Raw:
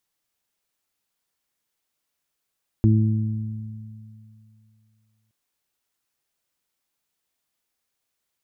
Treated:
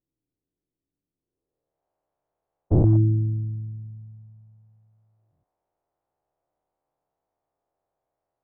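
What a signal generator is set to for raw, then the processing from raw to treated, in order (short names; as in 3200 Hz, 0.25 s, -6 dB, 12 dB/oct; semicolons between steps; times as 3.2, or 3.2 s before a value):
additive tone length 2.47 s, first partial 109 Hz, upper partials -4.5/-8.5 dB, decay 2.62 s, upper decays 2.44/1.17 s, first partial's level -13.5 dB
spectral dilation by 0.24 s; low-pass sweep 270 Hz -> 720 Hz, 1.18–1.85; bell 220 Hz -14.5 dB 0.26 oct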